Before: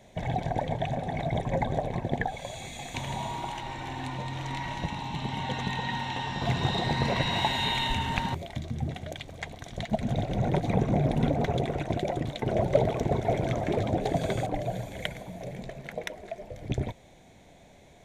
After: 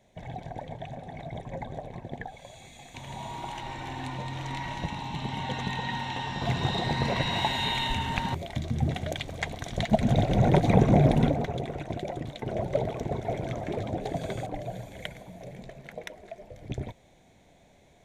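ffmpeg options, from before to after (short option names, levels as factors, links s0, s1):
-af "volume=1.88,afade=t=in:st=2.95:d=0.7:silence=0.375837,afade=t=in:st=8.21:d=0.74:silence=0.501187,afade=t=out:st=11.07:d=0.4:silence=0.316228"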